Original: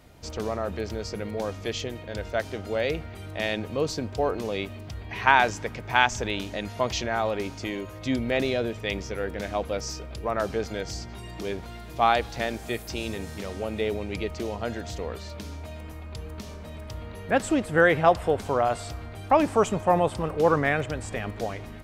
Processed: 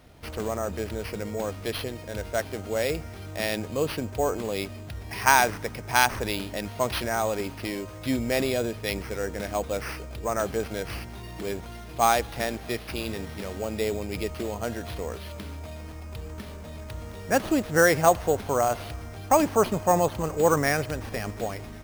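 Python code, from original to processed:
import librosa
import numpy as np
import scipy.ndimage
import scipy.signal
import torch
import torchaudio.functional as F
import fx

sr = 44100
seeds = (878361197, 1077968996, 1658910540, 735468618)

y = fx.sample_hold(x, sr, seeds[0], rate_hz=7400.0, jitter_pct=0)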